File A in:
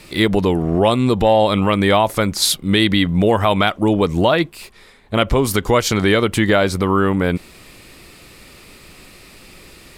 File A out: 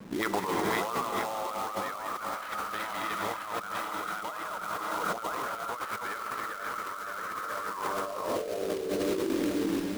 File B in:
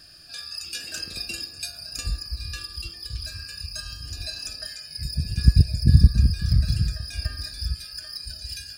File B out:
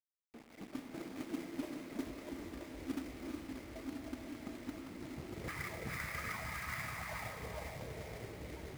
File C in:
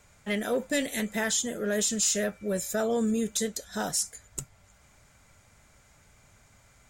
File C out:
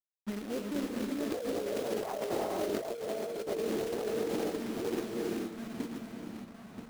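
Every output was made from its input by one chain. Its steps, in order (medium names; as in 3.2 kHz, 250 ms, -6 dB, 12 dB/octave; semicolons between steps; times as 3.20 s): backward echo that repeats 490 ms, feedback 66%, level -2 dB; low-pass 9.8 kHz 12 dB/octave; peaking EQ 6.4 kHz +9 dB 0.65 oct; de-hum 393.8 Hz, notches 8; sample-rate reducer 7.1 kHz, jitter 0%; auto-wah 200–1300 Hz, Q 5.1, up, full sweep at -11 dBFS; companded quantiser 4-bit; on a send: echo whose repeats swap between lows and highs 108 ms, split 1.3 kHz, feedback 61%, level -13 dB; on the sum: gated-style reverb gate 500 ms rising, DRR 3.5 dB; compressor with a negative ratio -34 dBFS, ratio -1; tape noise reduction on one side only decoder only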